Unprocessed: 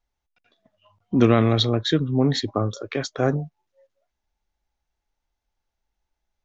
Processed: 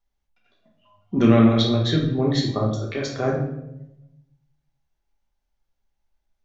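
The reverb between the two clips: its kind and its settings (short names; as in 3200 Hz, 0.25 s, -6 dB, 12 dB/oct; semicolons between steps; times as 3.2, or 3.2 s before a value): shoebox room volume 240 m³, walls mixed, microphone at 1.2 m; gain -4 dB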